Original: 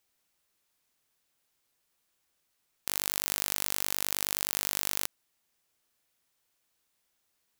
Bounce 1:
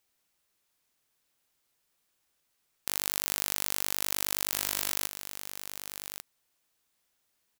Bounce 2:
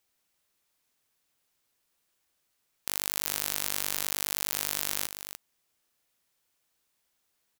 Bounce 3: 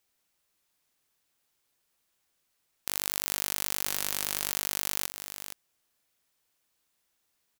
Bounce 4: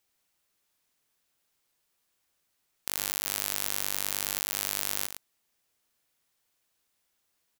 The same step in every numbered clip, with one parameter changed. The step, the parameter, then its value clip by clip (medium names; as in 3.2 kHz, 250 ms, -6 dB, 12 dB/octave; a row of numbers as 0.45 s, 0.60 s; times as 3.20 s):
delay, time: 1146 ms, 296 ms, 469 ms, 112 ms